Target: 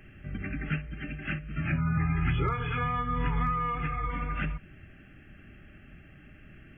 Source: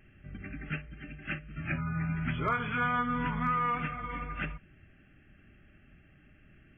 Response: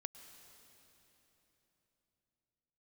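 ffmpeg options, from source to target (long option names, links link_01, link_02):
-filter_complex "[0:a]asettb=1/sr,asplit=3[link_01][link_02][link_03];[link_01]atrim=end=1.974[link_04];[link_02]atrim=start=1.97:end=4.1,asetpts=PTS-STARTPTS,afade=type=in:duration=0.004:curve=qsin,afade=type=out:start_time=2.126:duration=0.004:curve=qsin,aecho=1:1:2.4:0.94,atrim=end_sample=93933[link_05];[link_03]atrim=start=4.096[link_06];[link_04][link_05]acrossfade=duration=0.004:curve1=hsin:curve2=qsin[link_07];[link_07][link_06]acrossfade=duration=0.004:curve1=qsin:curve2=hsin,acrossover=split=200[link_08][link_09];[link_09]acompressor=threshold=-42dB:ratio=3[link_10];[link_08][link_10]amix=inputs=2:normalize=0,volume=7.5dB"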